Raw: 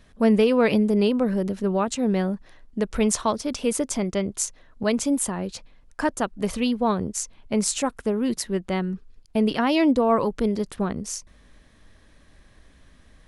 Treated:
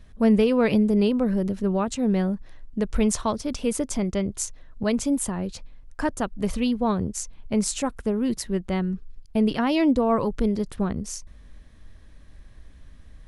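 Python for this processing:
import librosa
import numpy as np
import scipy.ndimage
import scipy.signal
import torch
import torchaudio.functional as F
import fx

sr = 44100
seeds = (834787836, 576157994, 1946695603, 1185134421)

y = fx.low_shelf(x, sr, hz=140.0, db=12.0)
y = y * librosa.db_to_amplitude(-3.0)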